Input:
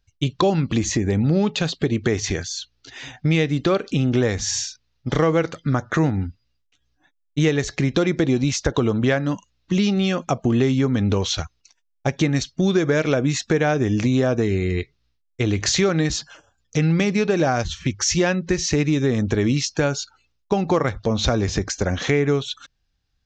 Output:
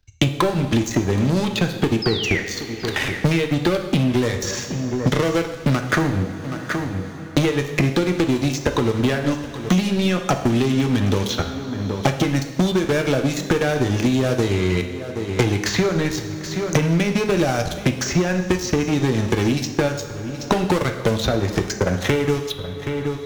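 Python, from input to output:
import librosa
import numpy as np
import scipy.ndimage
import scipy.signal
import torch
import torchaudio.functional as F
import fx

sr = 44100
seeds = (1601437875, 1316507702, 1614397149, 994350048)

p1 = fx.transient(x, sr, attack_db=10, sustain_db=-11)
p2 = fx.leveller(p1, sr, passes=5)
p3 = fx.spec_paint(p2, sr, seeds[0], shape='fall', start_s=2.02, length_s=0.38, low_hz=1800.0, high_hz=5300.0, level_db=-7.0)
p4 = p3 + fx.echo_single(p3, sr, ms=774, db=-22.5, dry=0)
p5 = fx.rev_double_slope(p4, sr, seeds[1], early_s=0.66, late_s=2.4, knee_db=-18, drr_db=5.0)
p6 = fx.band_squash(p5, sr, depth_pct=100)
y = F.gain(torch.from_numpy(p6), -18.0).numpy()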